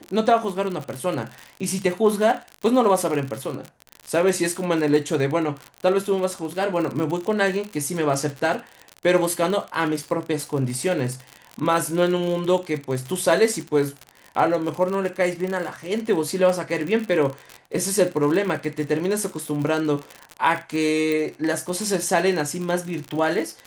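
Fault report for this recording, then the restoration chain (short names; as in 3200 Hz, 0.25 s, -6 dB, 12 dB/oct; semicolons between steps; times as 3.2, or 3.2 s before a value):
crackle 56/s -26 dBFS
21.12 pop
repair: de-click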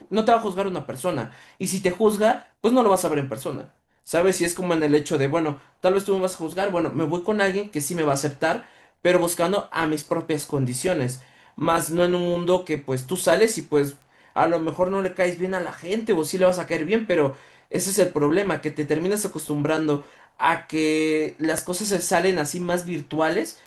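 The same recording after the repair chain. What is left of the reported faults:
21.12 pop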